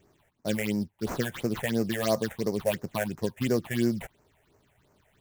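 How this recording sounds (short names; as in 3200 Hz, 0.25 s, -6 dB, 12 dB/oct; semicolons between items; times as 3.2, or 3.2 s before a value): aliases and images of a low sample rate 5100 Hz, jitter 20%; phasing stages 6, 2.9 Hz, lowest notch 280–3400 Hz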